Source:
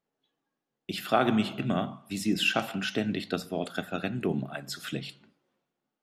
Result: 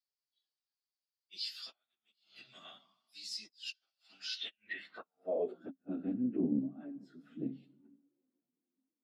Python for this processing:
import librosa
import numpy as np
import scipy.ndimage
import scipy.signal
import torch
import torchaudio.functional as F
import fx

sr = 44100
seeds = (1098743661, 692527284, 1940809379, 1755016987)

y = fx.gate_flip(x, sr, shuts_db=-16.0, range_db=-40)
y = fx.filter_sweep_bandpass(y, sr, from_hz=4700.0, to_hz=270.0, start_s=2.87, end_s=3.78, q=7.5)
y = fx.stretch_vocoder_free(y, sr, factor=1.5)
y = fx.doppler_dist(y, sr, depth_ms=0.11)
y = y * librosa.db_to_amplitude(8.5)